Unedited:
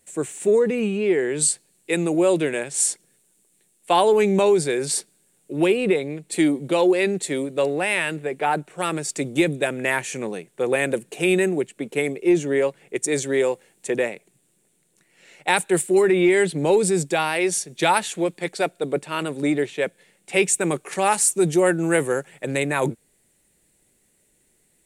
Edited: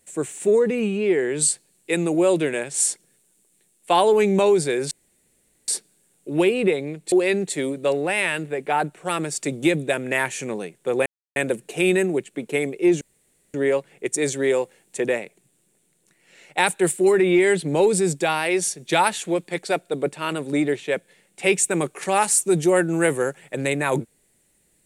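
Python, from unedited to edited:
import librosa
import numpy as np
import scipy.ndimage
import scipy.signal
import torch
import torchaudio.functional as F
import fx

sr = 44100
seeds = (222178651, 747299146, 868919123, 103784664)

y = fx.edit(x, sr, fx.insert_room_tone(at_s=4.91, length_s=0.77),
    fx.cut(start_s=6.35, length_s=0.5),
    fx.insert_silence(at_s=10.79, length_s=0.3),
    fx.insert_room_tone(at_s=12.44, length_s=0.53), tone=tone)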